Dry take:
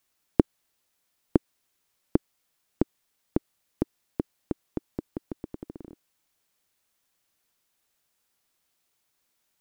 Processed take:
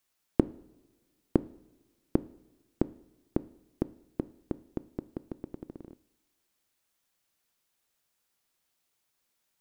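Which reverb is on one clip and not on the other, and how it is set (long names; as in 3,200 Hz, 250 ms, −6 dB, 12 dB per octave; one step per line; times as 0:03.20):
coupled-rooms reverb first 0.67 s, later 1.8 s, from −16 dB, DRR 15.5 dB
level −3 dB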